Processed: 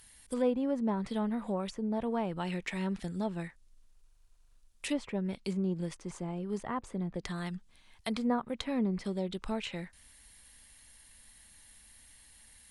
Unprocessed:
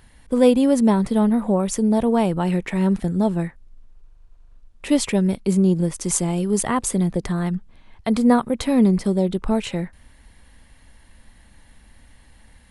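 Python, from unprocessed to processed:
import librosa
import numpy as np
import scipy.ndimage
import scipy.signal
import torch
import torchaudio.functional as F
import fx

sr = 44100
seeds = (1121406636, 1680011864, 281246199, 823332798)

y = F.preemphasis(torch.from_numpy(x), 0.9).numpy()
y = fx.env_lowpass_down(y, sr, base_hz=1200.0, full_db=-30.5)
y = y * librosa.db_to_amplitude(4.5)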